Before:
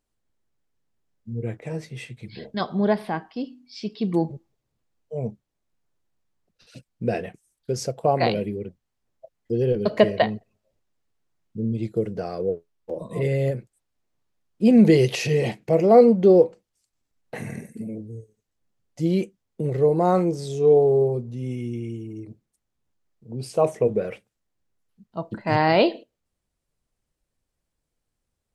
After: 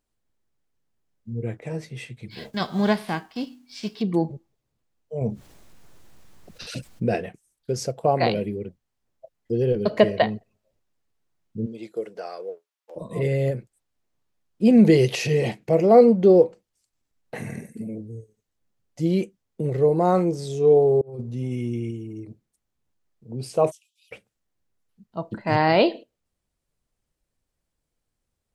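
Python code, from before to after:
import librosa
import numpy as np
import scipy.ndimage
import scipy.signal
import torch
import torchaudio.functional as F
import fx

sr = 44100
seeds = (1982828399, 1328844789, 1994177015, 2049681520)

y = fx.envelope_flatten(x, sr, power=0.6, at=(2.3, 4.01), fade=0.02)
y = fx.env_flatten(y, sr, amount_pct=50, at=(5.21, 7.16))
y = fx.highpass(y, sr, hz=fx.line((11.65, 390.0), (12.95, 1100.0)), slope=12, at=(11.65, 12.95), fade=0.02)
y = fx.over_compress(y, sr, threshold_db=-29.0, ratio=-0.5, at=(21.01, 21.91))
y = fx.steep_highpass(y, sr, hz=2900.0, slope=72, at=(23.7, 24.11), fade=0.02)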